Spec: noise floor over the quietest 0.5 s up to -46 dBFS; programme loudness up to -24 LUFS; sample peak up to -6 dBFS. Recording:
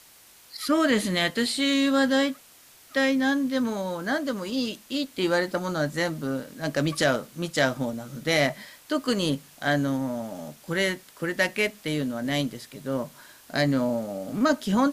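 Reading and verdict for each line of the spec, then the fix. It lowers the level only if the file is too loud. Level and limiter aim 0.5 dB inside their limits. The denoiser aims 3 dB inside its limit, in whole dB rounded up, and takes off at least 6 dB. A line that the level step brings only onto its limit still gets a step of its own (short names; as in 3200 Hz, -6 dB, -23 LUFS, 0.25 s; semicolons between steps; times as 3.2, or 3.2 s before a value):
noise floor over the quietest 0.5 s -53 dBFS: OK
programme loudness -26.0 LUFS: OK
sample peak -9.5 dBFS: OK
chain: none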